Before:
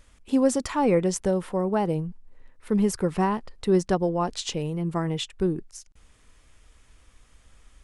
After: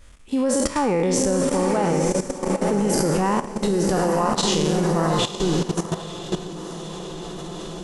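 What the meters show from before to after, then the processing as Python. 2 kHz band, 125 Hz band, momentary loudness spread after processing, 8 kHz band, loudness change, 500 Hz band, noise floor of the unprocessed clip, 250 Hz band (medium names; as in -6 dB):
+7.0 dB, +4.5 dB, 13 LU, +9.5 dB, +4.0 dB, +4.5 dB, -58 dBFS, +3.5 dB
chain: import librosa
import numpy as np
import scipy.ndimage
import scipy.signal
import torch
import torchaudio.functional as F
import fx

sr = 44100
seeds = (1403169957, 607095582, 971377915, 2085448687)

y = fx.spec_trails(x, sr, decay_s=0.97)
y = fx.echo_diffused(y, sr, ms=940, feedback_pct=57, wet_db=-4.5)
y = fx.level_steps(y, sr, step_db=13)
y = F.gain(torch.from_numpy(y), 6.0).numpy()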